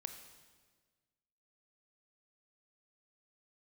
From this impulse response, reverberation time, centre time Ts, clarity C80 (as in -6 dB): 1.5 s, 21 ms, 9.5 dB